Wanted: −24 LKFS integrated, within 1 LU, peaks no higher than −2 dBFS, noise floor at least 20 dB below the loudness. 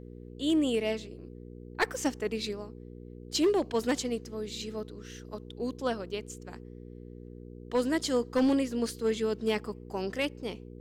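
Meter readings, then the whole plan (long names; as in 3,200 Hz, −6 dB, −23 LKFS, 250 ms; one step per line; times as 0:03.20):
share of clipped samples 0.5%; peaks flattened at −20.0 dBFS; mains hum 60 Hz; hum harmonics up to 480 Hz; level of the hum −43 dBFS; integrated loudness −31.0 LKFS; sample peak −20.0 dBFS; target loudness −24.0 LKFS
→ clipped peaks rebuilt −20 dBFS
hum removal 60 Hz, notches 8
level +7 dB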